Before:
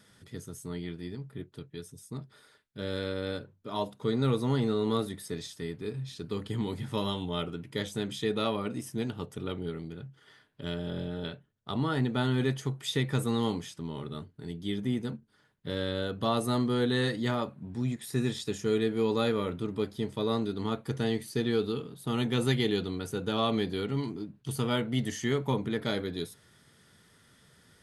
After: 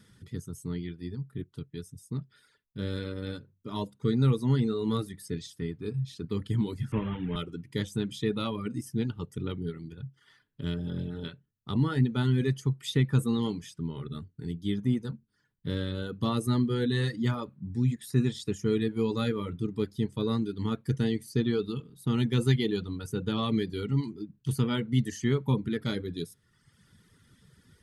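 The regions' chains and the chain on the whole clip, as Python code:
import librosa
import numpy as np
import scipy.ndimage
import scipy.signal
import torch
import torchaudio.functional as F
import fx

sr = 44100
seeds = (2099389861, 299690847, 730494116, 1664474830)

y = fx.chain(x, sr, fx.delta_mod(bps=16000, step_db=-38.0),
    fx.doubler(ms=27.0, db=-12),
    fx.band_squash(depth_pct=40), at=(6.92, 7.36))
y = fx.low_shelf(y, sr, hz=300.0, db=10.0)
y = fx.dereverb_blind(y, sr, rt60_s=1.0)
y = fx.peak_eq(y, sr, hz=670.0, db=-10.0, octaves=0.6)
y = y * librosa.db_to_amplitude(-1.5)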